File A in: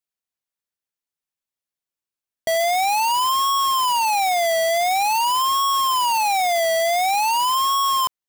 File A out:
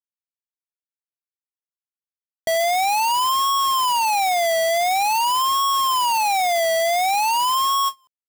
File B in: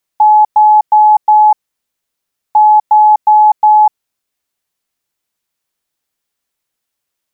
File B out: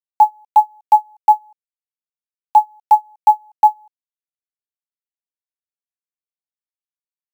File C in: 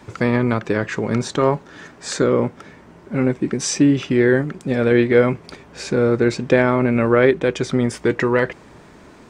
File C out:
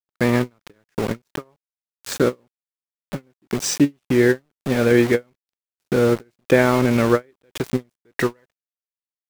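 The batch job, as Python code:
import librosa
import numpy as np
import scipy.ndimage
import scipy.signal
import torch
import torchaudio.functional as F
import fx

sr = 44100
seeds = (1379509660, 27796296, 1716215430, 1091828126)

y = np.where(np.abs(x) >= 10.0 ** (-24.0 / 20.0), x, 0.0)
y = fx.end_taper(y, sr, db_per_s=490.0)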